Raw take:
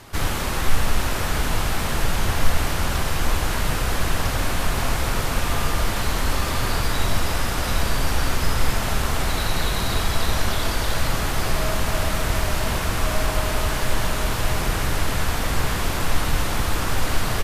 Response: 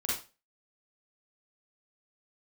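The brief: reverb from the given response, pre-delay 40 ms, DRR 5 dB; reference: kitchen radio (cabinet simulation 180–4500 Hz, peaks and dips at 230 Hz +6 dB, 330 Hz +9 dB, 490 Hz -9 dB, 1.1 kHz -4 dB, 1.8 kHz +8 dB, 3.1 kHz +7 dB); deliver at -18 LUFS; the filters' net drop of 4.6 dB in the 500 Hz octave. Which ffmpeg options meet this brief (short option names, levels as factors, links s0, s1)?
-filter_complex "[0:a]equalizer=f=500:t=o:g=-5.5,asplit=2[s0][s1];[1:a]atrim=start_sample=2205,adelay=40[s2];[s1][s2]afir=irnorm=-1:irlink=0,volume=0.299[s3];[s0][s3]amix=inputs=2:normalize=0,highpass=180,equalizer=f=230:t=q:w=4:g=6,equalizer=f=330:t=q:w=4:g=9,equalizer=f=490:t=q:w=4:g=-9,equalizer=f=1100:t=q:w=4:g=-4,equalizer=f=1800:t=q:w=4:g=8,equalizer=f=3100:t=q:w=4:g=7,lowpass=f=4500:w=0.5412,lowpass=f=4500:w=1.3066,volume=1.88"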